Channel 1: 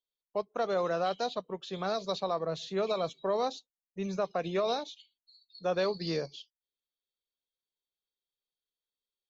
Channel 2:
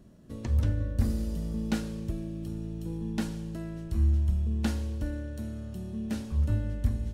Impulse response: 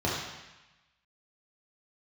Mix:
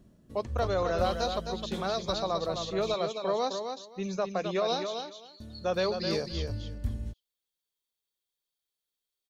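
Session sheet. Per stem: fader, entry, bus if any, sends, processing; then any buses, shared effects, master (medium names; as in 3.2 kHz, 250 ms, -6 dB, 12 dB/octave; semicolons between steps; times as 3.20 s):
+0.5 dB, 0.00 s, no send, echo send -6.5 dB, treble shelf 4.5 kHz +7 dB
-3.0 dB, 0.00 s, muted 2.95–5.40 s, no send, no echo send, auto duck -6 dB, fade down 0.50 s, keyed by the first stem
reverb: none
echo: feedback delay 261 ms, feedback 17%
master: none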